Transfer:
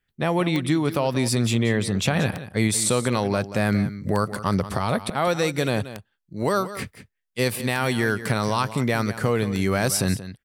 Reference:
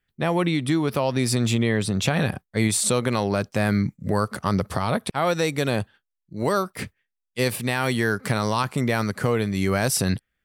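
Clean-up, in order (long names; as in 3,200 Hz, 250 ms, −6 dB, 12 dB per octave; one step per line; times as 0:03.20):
click removal
echo removal 181 ms −13.5 dB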